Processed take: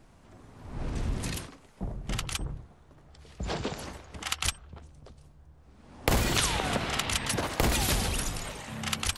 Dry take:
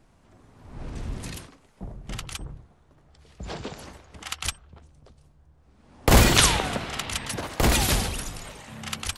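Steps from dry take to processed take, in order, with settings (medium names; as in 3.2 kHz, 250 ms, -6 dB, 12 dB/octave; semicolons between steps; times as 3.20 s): compression 6:1, threshold -26 dBFS, peak gain reduction 14.5 dB; trim +2.5 dB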